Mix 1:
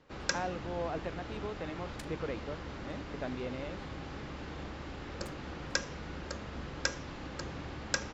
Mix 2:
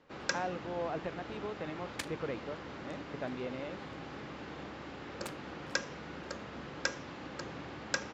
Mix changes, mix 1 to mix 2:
first sound: add high-pass 120 Hz 12 dB/octave; second sound +11.0 dB; master: add tone controls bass -2 dB, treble -4 dB

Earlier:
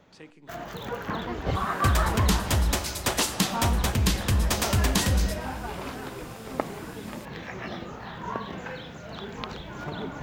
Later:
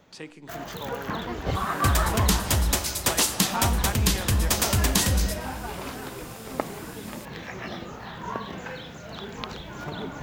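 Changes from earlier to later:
speech +7.0 dB; master: add treble shelf 5.6 kHz +7.5 dB

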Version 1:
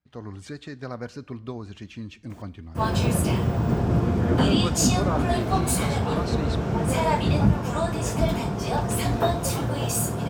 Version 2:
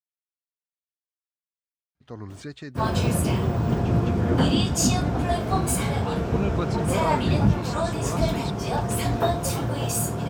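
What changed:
speech: entry +1.95 s; reverb: off

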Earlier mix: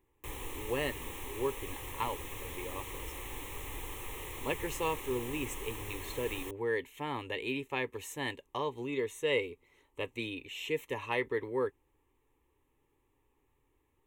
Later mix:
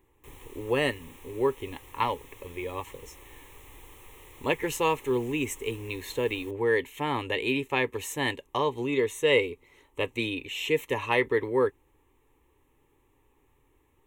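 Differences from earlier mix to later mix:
speech +8.0 dB; background -8.0 dB

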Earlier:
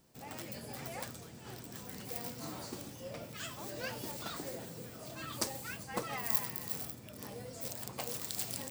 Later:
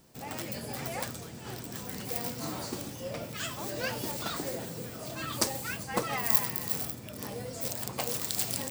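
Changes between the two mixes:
speech +7.0 dB; background +7.0 dB

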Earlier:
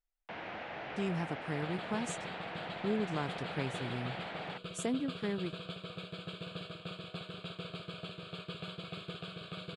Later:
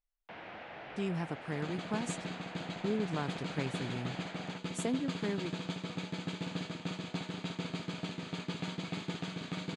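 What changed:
first sound -4.0 dB; second sound: remove static phaser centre 1.3 kHz, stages 8

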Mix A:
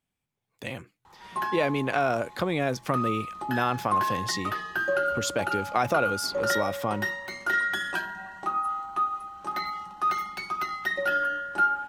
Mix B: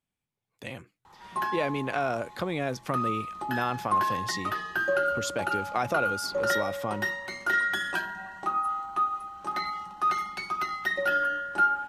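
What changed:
speech -3.5 dB; master: add brick-wall FIR low-pass 14 kHz

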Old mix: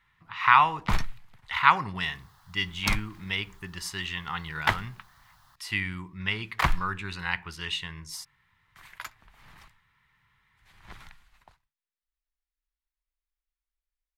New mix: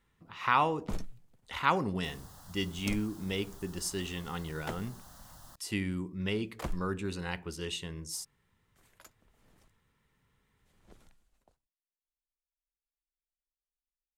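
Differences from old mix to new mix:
first sound -10.5 dB; second sound +10.0 dB; master: add graphic EQ 125/250/500/1000/2000/4000/8000 Hz -4/+7/+11/-9/-10/-5/+5 dB

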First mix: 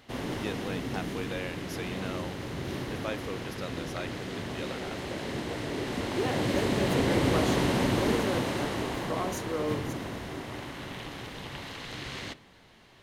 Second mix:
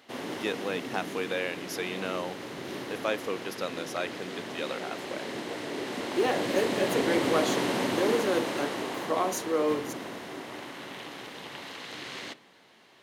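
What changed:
speech +6.0 dB; master: add high-pass 250 Hz 12 dB/octave

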